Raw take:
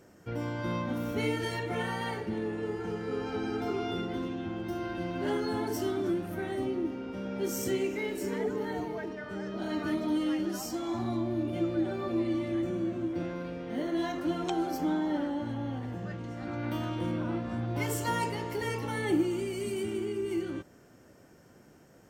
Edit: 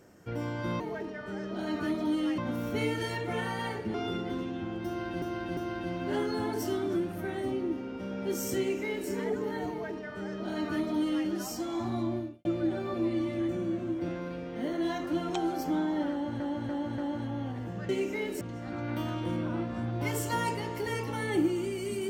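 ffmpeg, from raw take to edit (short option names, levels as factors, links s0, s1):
-filter_complex "[0:a]asplit=12[s0][s1][s2][s3][s4][s5][s6][s7][s8][s9][s10][s11];[s0]atrim=end=0.802[s12];[s1]atrim=start=8.828:end=10.412[s13];[s2]atrim=start=0.798:end=2.362[s14];[s3]atrim=start=3.778:end=5.062[s15];[s4]atrim=start=4.708:end=5.062[s16];[s5]atrim=start=4.708:end=11.59,asetpts=PTS-STARTPTS,afade=t=out:st=6.592:d=0.29:c=qua[s17];[s6]atrim=start=11.59:end=15.542,asetpts=PTS-STARTPTS,afade=t=in:d=0.004:c=hsin[s18];[s7]atrim=start=15.248:end=15.542[s19];[s8]atrim=start=15.248:end=15.542[s20];[s9]atrim=start=15.248:end=16.162[s21];[s10]atrim=start=7.718:end=8.242[s22];[s11]atrim=start=16.158[s23];[s12][s13]acrossfade=d=0.004:c1=hsin:c2=hsin[s24];[s24][s14]acrossfade=d=0.004:c1=hsin:c2=hsin[s25];[s25][s15]acrossfade=d=0.004:c1=hsin:c2=hsin[s26];[s26][s16]acrossfade=d=0.004:c1=hsin:c2=hsin[s27];[s17][s18]concat=n=2:v=0:a=1[s28];[s27][s28]acrossfade=d=0.004:c1=hsin:c2=hsin[s29];[s29][s19]acrossfade=d=0.004:c1=hsin:c2=hsin[s30];[s30][s20]acrossfade=d=0.004:c1=hsin:c2=hsin[s31];[s31][s21]acrossfade=d=0.004:c1=hsin:c2=hsin[s32];[s32][s22]acrossfade=d=0.004:c1=hsin:c2=hsin[s33];[s33][s23]acrossfade=d=0.004:c1=hsin:c2=hsin"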